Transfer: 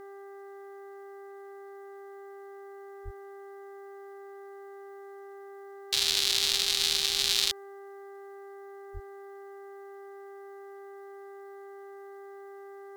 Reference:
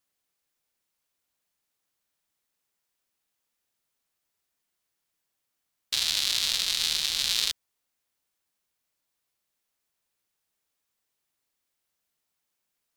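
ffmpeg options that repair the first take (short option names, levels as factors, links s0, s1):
-filter_complex "[0:a]bandreject=f=396.2:t=h:w=4,bandreject=f=792.4:t=h:w=4,bandreject=f=1188.6:t=h:w=4,bandreject=f=1584.8:t=h:w=4,bandreject=f=1981:t=h:w=4,asplit=3[s0][s1][s2];[s0]afade=t=out:st=3.04:d=0.02[s3];[s1]highpass=f=140:w=0.5412,highpass=f=140:w=1.3066,afade=t=in:st=3.04:d=0.02,afade=t=out:st=3.16:d=0.02[s4];[s2]afade=t=in:st=3.16:d=0.02[s5];[s3][s4][s5]amix=inputs=3:normalize=0,asplit=3[s6][s7][s8];[s6]afade=t=out:st=8.93:d=0.02[s9];[s7]highpass=f=140:w=0.5412,highpass=f=140:w=1.3066,afade=t=in:st=8.93:d=0.02,afade=t=out:st=9.05:d=0.02[s10];[s8]afade=t=in:st=9.05:d=0.02[s11];[s9][s10][s11]amix=inputs=3:normalize=0,agate=range=0.0891:threshold=0.0126"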